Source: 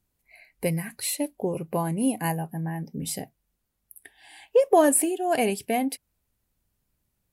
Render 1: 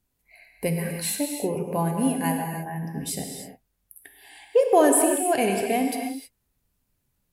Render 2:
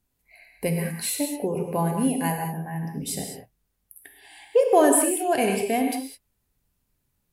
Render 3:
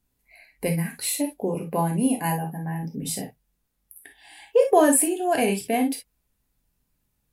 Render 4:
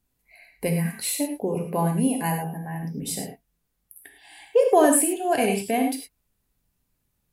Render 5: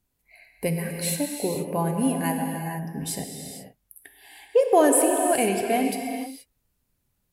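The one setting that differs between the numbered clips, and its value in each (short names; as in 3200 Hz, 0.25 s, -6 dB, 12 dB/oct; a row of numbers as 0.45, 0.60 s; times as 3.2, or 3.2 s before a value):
non-linear reverb, gate: 340, 230, 80, 130, 500 ms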